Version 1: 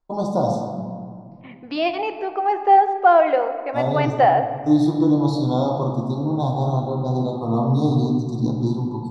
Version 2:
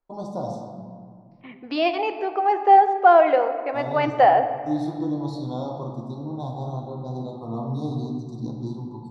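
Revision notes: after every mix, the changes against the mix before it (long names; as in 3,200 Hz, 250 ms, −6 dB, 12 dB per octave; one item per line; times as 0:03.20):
first voice −9.5 dB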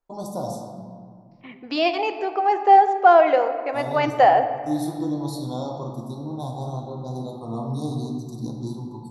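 master: remove high-frequency loss of the air 140 metres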